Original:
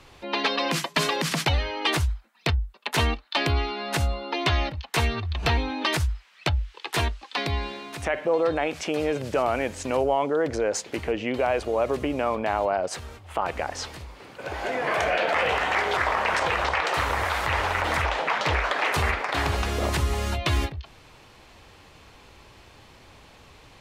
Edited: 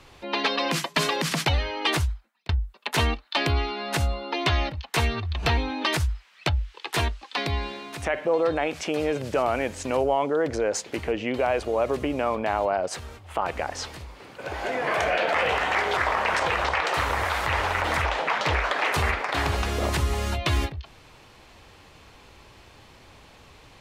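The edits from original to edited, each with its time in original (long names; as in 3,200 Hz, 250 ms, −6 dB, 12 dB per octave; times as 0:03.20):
0:02.01–0:02.49: fade out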